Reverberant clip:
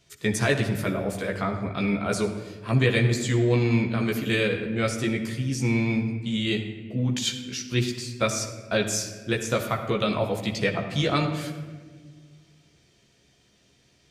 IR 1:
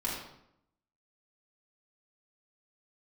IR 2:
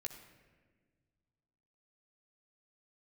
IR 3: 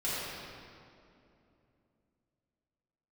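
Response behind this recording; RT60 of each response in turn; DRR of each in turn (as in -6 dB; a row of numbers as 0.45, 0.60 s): 2; 0.75, 1.5, 2.7 s; -6.0, 0.5, -10.5 dB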